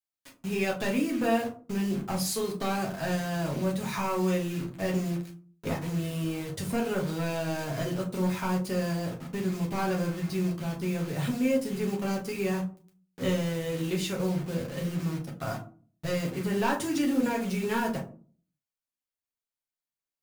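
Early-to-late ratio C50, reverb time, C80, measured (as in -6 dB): 10.5 dB, 0.40 s, 16.0 dB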